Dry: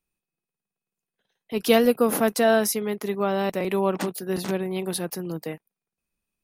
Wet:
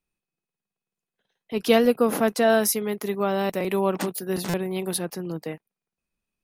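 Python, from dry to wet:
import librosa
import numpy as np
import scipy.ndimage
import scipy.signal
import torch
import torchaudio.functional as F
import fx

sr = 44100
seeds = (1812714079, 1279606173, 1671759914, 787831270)

y = fx.high_shelf(x, sr, hz=8800.0, db=fx.steps((0.0, -8.0), (2.49, 4.5), (4.97, -9.5)))
y = fx.buffer_glitch(y, sr, at_s=(4.49,), block=256, repeats=7)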